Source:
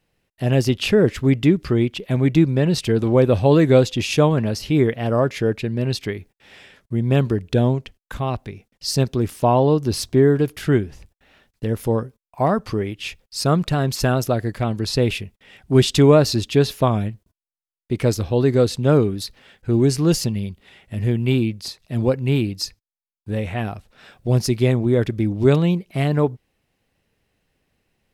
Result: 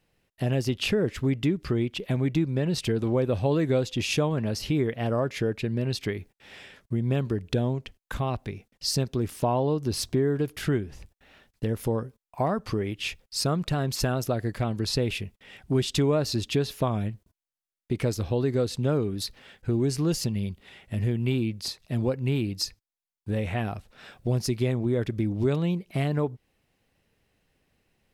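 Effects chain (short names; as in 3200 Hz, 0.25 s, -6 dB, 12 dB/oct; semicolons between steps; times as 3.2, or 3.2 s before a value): compressor 2.5:1, threshold -24 dBFS, peak gain reduction 11 dB; gain -1 dB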